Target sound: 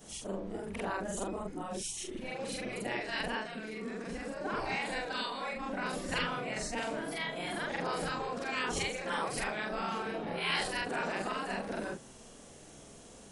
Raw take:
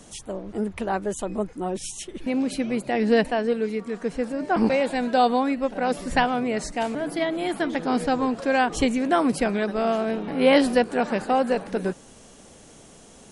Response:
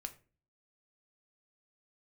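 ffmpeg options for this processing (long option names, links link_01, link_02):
-af "afftfilt=real='re':imag='-im':win_size=4096:overlap=0.75,afftfilt=real='re*lt(hypot(re,im),0.158)':imag='im*lt(hypot(re,im),0.158)':win_size=1024:overlap=0.75"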